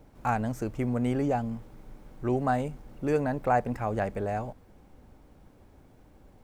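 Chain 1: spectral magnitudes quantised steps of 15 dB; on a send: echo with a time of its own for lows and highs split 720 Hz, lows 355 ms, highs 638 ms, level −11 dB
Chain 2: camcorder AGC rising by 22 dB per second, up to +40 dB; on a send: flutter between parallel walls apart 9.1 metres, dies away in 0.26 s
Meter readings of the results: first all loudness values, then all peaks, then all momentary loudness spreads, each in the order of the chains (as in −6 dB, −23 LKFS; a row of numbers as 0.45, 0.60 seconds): −30.0, −29.5 LKFS; −13.0, −12.5 dBFS; 17, 11 LU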